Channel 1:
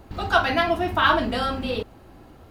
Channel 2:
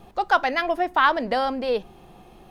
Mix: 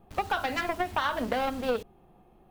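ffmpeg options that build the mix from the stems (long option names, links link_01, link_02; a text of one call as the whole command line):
ffmpeg -i stem1.wav -i stem2.wav -filter_complex "[0:a]acrusher=bits=5:mix=0:aa=0.000001,volume=-11dB[link_01];[1:a]equalizer=frequency=5300:width_type=o:width=2.1:gain=-14.5,alimiter=limit=-17dB:level=0:latency=1:release=121,aeval=exprs='0.141*(cos(1*acos(clip(val(0)/0.141,-1,1)))-cos(1*PI/2))+0.0355*(cos(3*acos(clip(val(0)/0.141,-1,1)))-cos(3*PI/2))':channel_layout=same,volume=2.5dB[link_02];[link_01][link_02]amix=inputs=2:normalize=0,acompressor=threshold=-24dB:ratio=3" out.wav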